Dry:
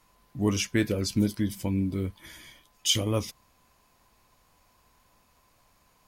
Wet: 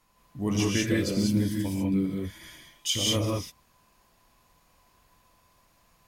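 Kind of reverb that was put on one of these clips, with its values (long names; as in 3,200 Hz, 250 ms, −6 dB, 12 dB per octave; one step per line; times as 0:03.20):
reverb whose tail is shaped and stops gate 220 ms rising, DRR −3 dB
level −4 dB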